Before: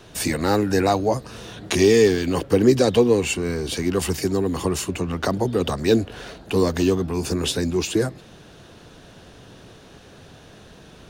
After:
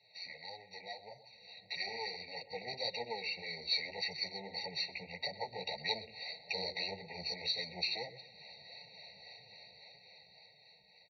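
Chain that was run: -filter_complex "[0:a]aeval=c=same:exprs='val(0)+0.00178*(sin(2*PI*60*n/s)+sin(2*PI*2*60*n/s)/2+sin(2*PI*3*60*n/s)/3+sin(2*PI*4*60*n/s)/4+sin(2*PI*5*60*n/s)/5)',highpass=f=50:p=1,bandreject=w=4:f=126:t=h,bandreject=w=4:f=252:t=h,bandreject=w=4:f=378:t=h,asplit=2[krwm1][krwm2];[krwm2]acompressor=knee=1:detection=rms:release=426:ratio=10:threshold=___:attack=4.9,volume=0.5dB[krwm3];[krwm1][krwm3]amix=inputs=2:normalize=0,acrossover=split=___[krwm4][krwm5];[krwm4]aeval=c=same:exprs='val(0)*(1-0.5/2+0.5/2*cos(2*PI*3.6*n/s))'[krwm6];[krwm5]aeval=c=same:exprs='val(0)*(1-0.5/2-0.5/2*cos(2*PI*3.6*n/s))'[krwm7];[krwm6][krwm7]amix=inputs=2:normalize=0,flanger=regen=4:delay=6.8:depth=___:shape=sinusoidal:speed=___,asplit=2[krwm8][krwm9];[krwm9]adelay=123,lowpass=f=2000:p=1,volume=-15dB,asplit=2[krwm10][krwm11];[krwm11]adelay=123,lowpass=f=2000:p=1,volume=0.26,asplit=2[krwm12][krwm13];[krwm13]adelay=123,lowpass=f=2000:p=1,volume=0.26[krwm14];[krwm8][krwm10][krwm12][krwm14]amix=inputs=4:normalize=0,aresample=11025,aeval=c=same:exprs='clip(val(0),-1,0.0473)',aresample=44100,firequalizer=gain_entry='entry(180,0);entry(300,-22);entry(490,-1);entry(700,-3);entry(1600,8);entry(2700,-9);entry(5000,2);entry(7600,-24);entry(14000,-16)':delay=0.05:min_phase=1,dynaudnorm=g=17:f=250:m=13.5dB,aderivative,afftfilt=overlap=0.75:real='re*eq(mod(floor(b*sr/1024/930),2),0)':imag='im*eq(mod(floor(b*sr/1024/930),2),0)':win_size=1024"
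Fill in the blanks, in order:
-29dB, 400, 9.1, 1.7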